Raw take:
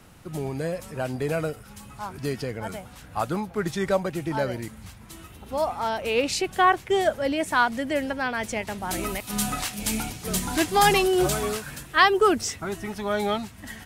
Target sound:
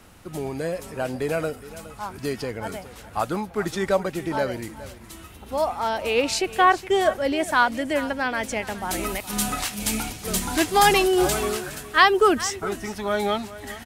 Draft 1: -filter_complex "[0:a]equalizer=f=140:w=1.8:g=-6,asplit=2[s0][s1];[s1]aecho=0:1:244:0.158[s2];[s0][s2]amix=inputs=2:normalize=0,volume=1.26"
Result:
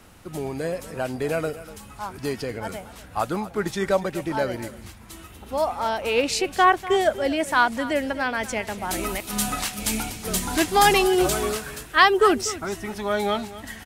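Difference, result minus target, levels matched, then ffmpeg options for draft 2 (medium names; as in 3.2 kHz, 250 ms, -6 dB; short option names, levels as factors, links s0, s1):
echo 172 ms early
-filter_complex "[0:a]equalizer=f=140:w=1.8:g=-6,asplit=2[s0][s1];[s1]aecho=0:1:416:0.158[s2];[s0][s2]amix=inputs=2:normalize=0,volume=1.26"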